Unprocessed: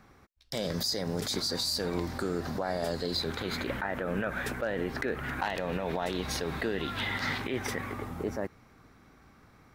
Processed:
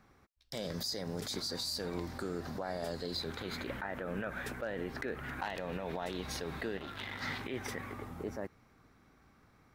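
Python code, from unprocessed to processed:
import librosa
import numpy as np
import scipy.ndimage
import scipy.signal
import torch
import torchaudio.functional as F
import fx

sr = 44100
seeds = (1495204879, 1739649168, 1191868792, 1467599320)

y = fx.transformer_sat(x, sr, knee_hz=980.0, at=(6.77, 7.21))
y = F.gain(torch.from_numpy(y), -6.5).numpy()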